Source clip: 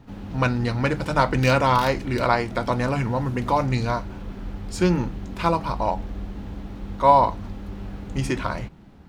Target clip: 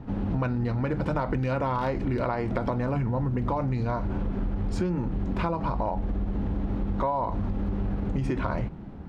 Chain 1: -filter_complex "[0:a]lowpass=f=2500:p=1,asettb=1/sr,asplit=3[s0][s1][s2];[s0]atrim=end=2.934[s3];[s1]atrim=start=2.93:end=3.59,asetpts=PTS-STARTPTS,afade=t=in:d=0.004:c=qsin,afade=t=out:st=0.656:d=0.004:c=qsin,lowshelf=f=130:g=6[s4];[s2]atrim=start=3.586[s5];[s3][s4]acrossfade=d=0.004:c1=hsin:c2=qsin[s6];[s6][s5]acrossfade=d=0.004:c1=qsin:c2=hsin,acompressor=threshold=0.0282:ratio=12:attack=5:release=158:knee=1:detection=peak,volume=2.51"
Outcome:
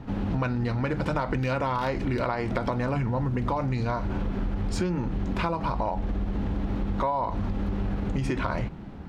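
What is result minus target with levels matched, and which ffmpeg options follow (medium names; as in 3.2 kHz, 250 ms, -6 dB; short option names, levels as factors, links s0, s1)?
2 kHz band +3.5 dB
-filter_complex "[0:a]lowpass=f=920:p=1,asettb=1/sr,asplit=3[s0][s1][s2];[s0]atrim=end=2.934[s3];[s1]atrim=start=2.93:end=3.59,asetpts=PTS-STARTPTS,afade=t=in:d=0.004:c=qsin,afade=t=out:st=0.656:d=0.004:c=qsin,lowshelf=f=130:g=6[s4];[s2]atrim=start=3.586[s5];[s3][s4]acrossfade=d=0.004:c1=hsin:c2=qsin[s6];[s6][s5]acrossfade=d=0.004:c1=qsin:c2=hsin,acompressor=threshold=0.0282:ratio=12:attack=5:release=158:knee=1:detection=peak,volume=2.51"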